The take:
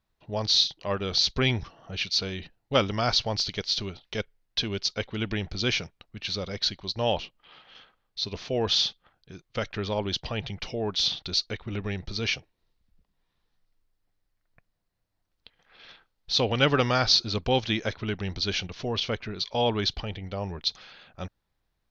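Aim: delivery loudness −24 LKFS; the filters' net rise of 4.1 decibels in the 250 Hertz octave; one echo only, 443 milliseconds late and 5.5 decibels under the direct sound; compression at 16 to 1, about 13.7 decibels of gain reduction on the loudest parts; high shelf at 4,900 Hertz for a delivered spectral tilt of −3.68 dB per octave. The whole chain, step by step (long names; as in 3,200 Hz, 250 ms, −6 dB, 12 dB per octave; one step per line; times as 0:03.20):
parametric band 250 Hz +5 dB
high-shelf EQ 4,900 Hz −5 dB
downward compressor 16 to 1, threshold −30 dBFS
single-tap delay 443 ms −5.5 dB
level +10.5 dB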